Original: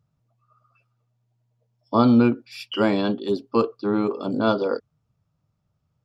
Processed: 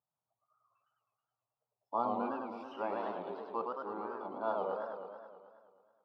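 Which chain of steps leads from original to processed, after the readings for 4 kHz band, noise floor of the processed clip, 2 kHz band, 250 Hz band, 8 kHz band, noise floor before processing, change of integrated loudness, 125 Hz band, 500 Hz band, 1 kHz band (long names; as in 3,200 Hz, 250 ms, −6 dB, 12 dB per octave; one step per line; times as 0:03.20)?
−26.0 dB, below −85 dBFS, −16.0 dB, −23.5 dB, can't be measured, −74 dBFS, −16.0 dB, −29.0 dB, −14.0 dB, −8.0 dB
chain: resonant band-pass 850 Hz, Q 3.3
feedback echo with a swinging delay time 107 ms, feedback 70%, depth 218 cents, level −3 dB
level −6.5 dB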